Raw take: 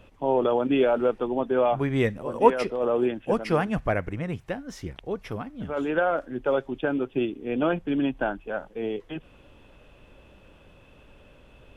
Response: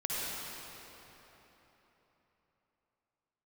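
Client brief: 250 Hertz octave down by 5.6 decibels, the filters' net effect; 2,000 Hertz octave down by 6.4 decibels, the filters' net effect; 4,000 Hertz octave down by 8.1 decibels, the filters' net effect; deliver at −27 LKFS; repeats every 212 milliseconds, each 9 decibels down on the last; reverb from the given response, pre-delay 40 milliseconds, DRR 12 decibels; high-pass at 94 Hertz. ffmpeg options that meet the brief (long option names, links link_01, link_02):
-filter_complex "[0:a]highpass=94,equalizer=frequency=250:width_type=o:gain=-7,equalizer=frequency=2000:width_type=o:gain=-7.5,equalizer=frequency=4000:width_type=o:gain=-8,aecho=1:1:212|424|636|848:0.355|0.124|0.0435|0.0152,asplit=2[link_01][link_02];[1:a]atrim=start_sample=2205,adelay=40[link_03];[link_02][link_03]afir=irnorm=-1:irlink=0,volume=-18.5dB[link_04];[link_01][link_04]amix=inputs=2:normalize=0,volume=1dB"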